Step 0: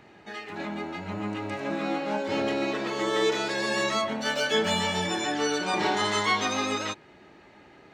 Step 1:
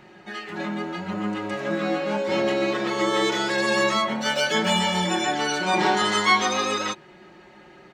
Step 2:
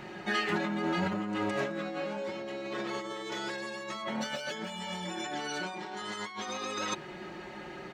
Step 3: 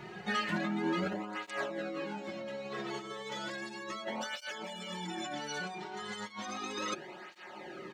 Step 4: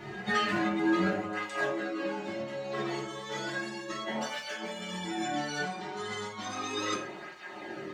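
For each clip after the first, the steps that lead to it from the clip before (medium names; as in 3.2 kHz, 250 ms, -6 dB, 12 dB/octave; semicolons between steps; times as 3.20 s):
comb 5.5 ms, depth 65%; trim +2.5 dB
compressor with a negative ratio -33 dBFS, ratio -1; trim -3 dB
cancelling through-zero flanger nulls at 0.34 Hz, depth 3.8 ms
reverberation, pre-delay 3 ms, DRR -3 dB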